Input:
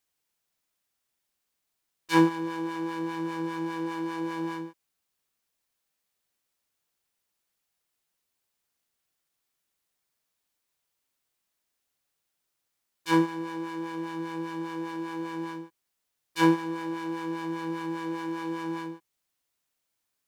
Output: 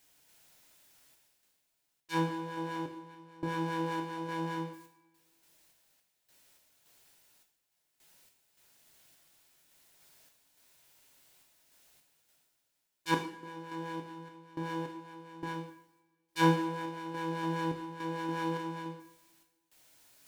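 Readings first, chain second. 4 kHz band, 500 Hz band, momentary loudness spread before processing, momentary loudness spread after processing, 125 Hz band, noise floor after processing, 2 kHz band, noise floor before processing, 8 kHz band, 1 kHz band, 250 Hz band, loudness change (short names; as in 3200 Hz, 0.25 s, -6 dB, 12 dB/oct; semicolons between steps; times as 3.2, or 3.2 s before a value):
-3.0 dB, -5.0 dB, 13 LU, 13 LU, 0.0 dB, -79 dBFS, -4.0 dB, -81 dBFS, -3.5 dB, -2.5 dB, -7.5 dB, -5.5 dB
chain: notch 1200 Hz, Q 9.3; reverse; upward compressor, threshold -48 dBFS; reverse; random-step tremolo, depth 95%; two-slope reverb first 0.59 s, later 1.7 s, from -19 dB, DRR 3 dB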